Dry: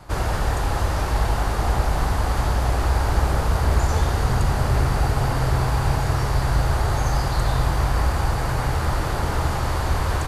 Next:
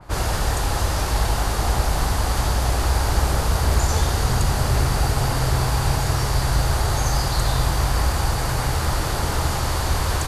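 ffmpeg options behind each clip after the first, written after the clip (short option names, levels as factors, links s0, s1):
-af "adynamicequalizer=threshold=0.00447:dfrequency=3000:dqfactor=0.7:tfrequency=3000:tqfactor=0.7:attack=5:release=100:ratio=0.375:range=4:mode=boostabove:tftype=highshelf"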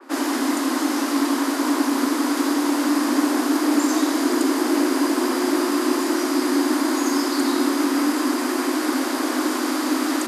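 -af "afreqshift=230,volume=0.891"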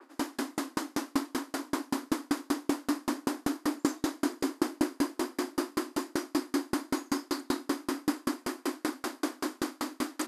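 -af "aeval=exprs='val(0)*pow(10,-39*if(lt(mod(5.2*n/s,1),2*abs(5.2)/1000),1-mod(5.2*n/s,1)/(2*abs(5.2)/1000),(mod(5.2*n/s,1)-2*abs(5.2)/1000)/(1-2*abs(5.2)/1000))/20)':c=same,volume=0.708"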